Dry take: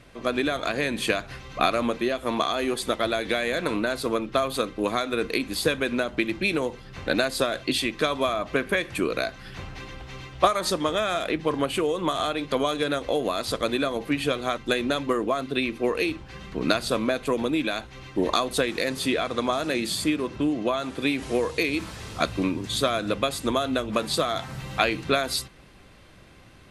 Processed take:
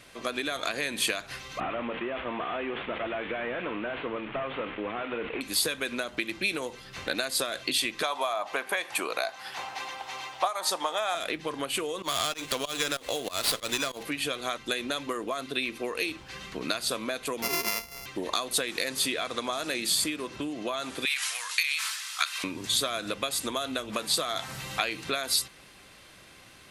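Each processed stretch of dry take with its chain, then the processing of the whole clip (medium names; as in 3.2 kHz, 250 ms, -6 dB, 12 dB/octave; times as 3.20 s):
1.60–5.41 s: one-bit delta coder 16 kbps, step -34.5 dBFS + decay stretcher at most 96 dB/s
8.03–11.15 s: high-pass 550 Hz 6 dB/octave + peaking EQ 820 Hz +15 dB 0.73 oct
12.02–14.03 s: treble shelf 2.3 kHz +9 dB + volume shaper 95 bpm, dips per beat 2, -23 dB, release 157 ms + sliding maximum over 5 samples
17.42–18.06 s: sorted samples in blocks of 64 samples + rippled EQ curve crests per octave 0.83, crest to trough 10 dB
21.05–22.44 s: high-pass 1.2 kHz 24 dB/octave + transient shaper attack +5 dB, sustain +9 dB
whole clip: compression 3:1, threshold -28 dBFS; tilt EQ +2.5 dB/octave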